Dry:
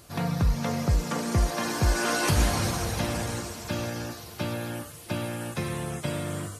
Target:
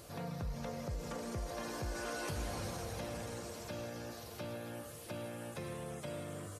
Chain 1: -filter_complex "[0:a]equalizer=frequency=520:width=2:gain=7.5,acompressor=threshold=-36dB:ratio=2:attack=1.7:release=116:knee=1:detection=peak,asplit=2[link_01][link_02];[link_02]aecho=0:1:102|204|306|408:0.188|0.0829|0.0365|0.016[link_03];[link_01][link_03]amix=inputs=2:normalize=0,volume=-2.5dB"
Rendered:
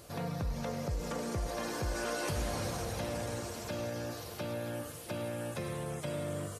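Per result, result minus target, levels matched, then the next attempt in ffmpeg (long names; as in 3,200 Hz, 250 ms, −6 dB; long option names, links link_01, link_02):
echo 57 ms early; downward compressor: peak gain reduction −5 dB
-filter_complex "[0:a]equalizer=frequency=520:width=2:gain=7.5,acompressor=threshold=-36dB:ratio=2:attack=1.7:release=116:knee=1:detection=peak,asplit=2[link_01][link_02];[link_02]aecho=0:1:159|318|477|636:0.188|0.0829|0.0365|0.016[link_03];[link_01][link_03]amix=inputs=2:normalize=0,volume=-2.5dB"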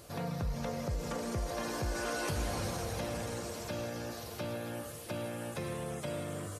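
downward compressor: peak gain reduction −5 dB
-filter_complex "[0:a]equalizer=frequency=520:width=2:gain=7.5,acompressor=threshold=-46dB:ratio=2:attack=1.7:release=116:knee=1:detection=peak,asplit=2[link_01][link_02];[link_02]aecho=0:1:159|318|477|636:0.188|0.0829|0.0365|0.016[link_03];[link_01][link_03]amix=inputs=2:normalize=0,volume=-2.5dB"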